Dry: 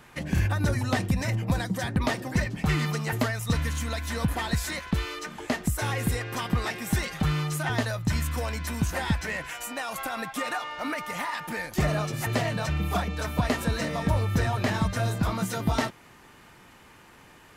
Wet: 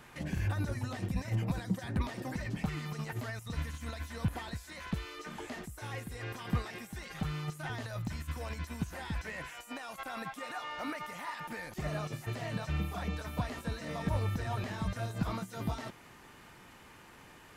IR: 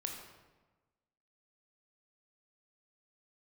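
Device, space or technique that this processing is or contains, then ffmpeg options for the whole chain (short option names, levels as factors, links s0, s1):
de-esser from a sidechain: -filter_complex "[0:a]asplit=2[s0][s1];[s1]highpass=5000,apad=whole_len=774672[s2];[s0][s2]sidechaincompress=threshold=0.00282:ratio=10:attack=1.7:release=21,volume=0.75"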